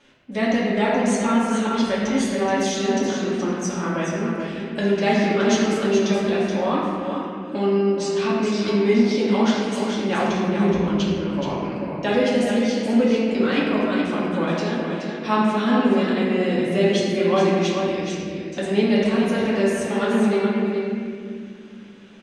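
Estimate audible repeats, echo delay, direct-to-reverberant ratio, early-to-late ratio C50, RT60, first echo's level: 1, 425 ms, -8.0 dB, -2.5 dB, 2.3 s, -6.0 dB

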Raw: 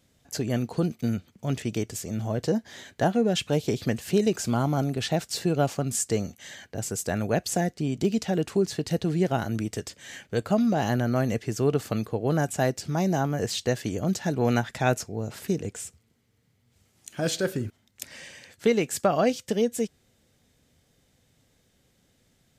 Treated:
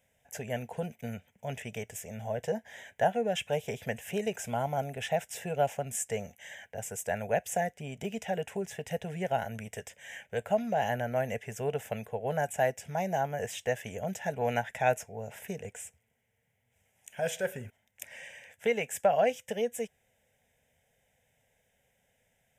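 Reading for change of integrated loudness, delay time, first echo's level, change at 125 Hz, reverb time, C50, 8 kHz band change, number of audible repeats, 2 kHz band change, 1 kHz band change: -6.0 dB, no echo, no echo, -11.5 dB, no reverb, no reverb, -7.0 dB, no echo, -2.0 dB, -1.0 dB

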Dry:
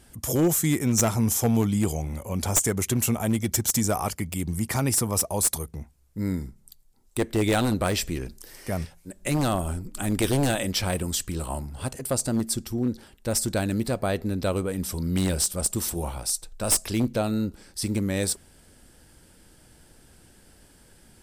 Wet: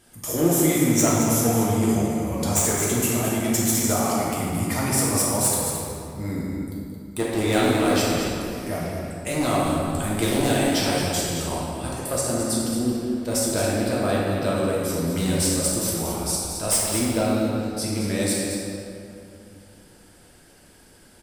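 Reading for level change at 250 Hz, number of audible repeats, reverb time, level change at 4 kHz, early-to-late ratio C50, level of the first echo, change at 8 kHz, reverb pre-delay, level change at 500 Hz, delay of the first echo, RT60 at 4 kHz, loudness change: +3.5 dB, 1, 2.6 s, +3.5 dB, -3.0 dB, -8.5 dB, +3.0 dB, 3 ms, +5.0 dB, 221 ms, 1.6 s, +3.0 dB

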